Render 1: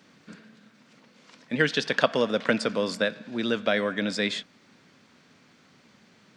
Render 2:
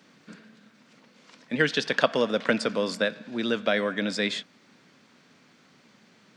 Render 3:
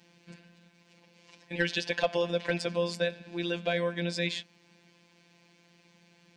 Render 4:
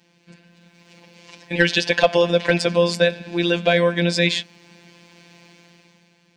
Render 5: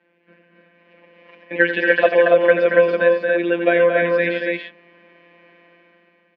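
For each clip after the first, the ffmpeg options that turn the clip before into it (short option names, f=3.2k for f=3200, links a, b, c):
-af "highpass=120"
-af "afftfilt=real='hypot(re,im)*cos(PI*b)':imag='0':win_size=1024:overlap=0.75,asoftclip=type=tanh:threshold=-11.5dB,superequalizer=10b=0.316:11b=0.708:12b=1.41"
-af "dynaudnorm=f=130:g=11:m=12dB,volume=1.5dB"
-filter_complex "[0:a]highpass=f=240:w=0.5412,highpass=f=240:w=1.3066,equalizer=f=560:t=q:w=4:g=5,equalizer=f=820:t=q:w=4:g=-5,equalizer=f=1.6k:t=q:w=4:g=5,lowpass=f=2.3k:w=0.5412,lowpass=f=2.3k:w=1.3066,asplit=2[a][b];[b]aecho=0:1:87.46|227.4|282.8:0.316|0.501|0.708[c];[a][c]amix=inputs=2:normalize=0,volume=-1dB"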